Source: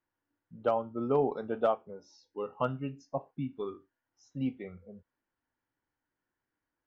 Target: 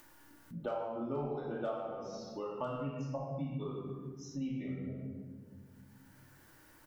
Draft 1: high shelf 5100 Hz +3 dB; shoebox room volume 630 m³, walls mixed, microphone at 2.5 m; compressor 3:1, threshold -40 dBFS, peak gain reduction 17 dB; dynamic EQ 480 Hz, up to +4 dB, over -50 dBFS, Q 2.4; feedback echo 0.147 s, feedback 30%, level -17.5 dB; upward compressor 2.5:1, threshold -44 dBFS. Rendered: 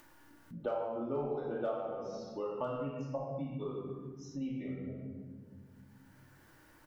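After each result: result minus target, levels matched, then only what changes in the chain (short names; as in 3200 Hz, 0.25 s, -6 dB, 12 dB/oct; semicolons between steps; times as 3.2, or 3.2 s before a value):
8000 Hz band -4.5 dB; 125 Hz band -3.5 dB
change: high shelf 5100 Hz +9.5 dB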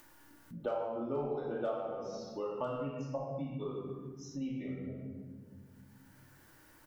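125 Hz band -3.5 dB
change: dynamic EQ 160 Hz, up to +4 dB, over -50 dBFS, Q 2.4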